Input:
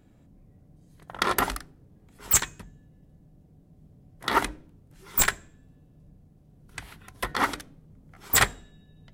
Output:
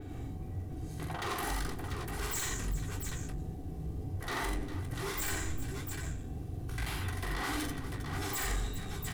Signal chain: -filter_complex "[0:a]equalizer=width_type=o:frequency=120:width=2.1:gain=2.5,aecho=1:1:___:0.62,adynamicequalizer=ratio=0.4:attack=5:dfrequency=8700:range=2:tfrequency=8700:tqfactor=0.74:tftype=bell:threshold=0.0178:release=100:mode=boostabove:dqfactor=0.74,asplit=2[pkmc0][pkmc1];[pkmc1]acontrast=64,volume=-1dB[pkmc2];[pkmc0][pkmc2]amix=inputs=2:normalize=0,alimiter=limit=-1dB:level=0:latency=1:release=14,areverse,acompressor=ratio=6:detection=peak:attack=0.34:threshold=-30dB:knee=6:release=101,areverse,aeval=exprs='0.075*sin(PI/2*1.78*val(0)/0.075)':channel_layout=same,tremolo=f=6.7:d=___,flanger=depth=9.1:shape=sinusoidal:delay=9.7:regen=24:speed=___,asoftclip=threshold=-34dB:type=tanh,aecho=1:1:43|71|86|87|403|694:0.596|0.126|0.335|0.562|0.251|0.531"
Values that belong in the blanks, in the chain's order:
2.6, 0.41, 1.7